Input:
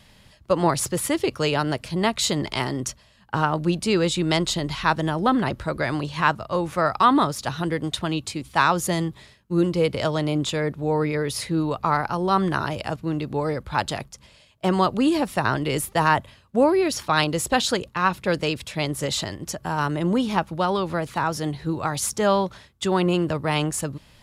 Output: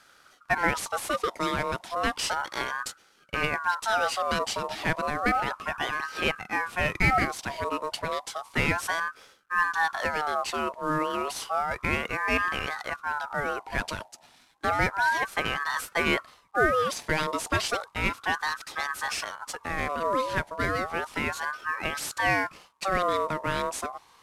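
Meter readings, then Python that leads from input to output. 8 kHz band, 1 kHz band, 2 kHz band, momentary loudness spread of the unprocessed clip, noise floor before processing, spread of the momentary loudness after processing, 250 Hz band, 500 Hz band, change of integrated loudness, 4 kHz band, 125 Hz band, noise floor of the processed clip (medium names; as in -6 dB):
-7.0 dB, -3.5 dB, +2.0 dB, 7 LU, -54 dBFS, 7 LU, -12.0 dB, -7.0 dB, -4.5 dB, -5.5 dB, -11.0 dB, -59 dBFS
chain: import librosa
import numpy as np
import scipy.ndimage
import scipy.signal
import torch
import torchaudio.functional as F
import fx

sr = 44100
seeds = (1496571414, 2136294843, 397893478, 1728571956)

y = fx.cvsd(x, sr, bps=64000)
y = fx.ring_lfo(y, sr, carrier_hz=1100.0, swing_pct=30, hz=0.32)
y = F.gain(torch.from_numpy(y), -2.0).numpy()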